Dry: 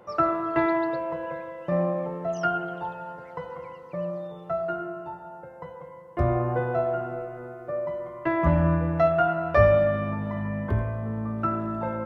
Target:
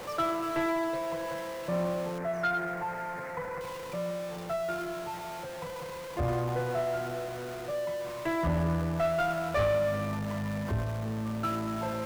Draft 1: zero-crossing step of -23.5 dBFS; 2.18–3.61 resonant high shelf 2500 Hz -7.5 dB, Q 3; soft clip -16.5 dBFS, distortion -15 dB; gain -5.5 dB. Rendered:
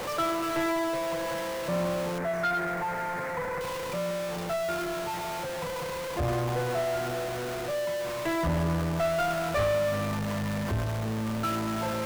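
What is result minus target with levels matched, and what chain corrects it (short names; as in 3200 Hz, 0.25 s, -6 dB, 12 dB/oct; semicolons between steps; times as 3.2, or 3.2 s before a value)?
zero-crossing step: distortion +6 dB
zero-crossing step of -31 dBFS; 2.18–3.61 resonant high shelf 2500 Hz -7.5 dB, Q 3; soft clip -16.5 dBFS, distortion -15 dB; gain -5.5 dB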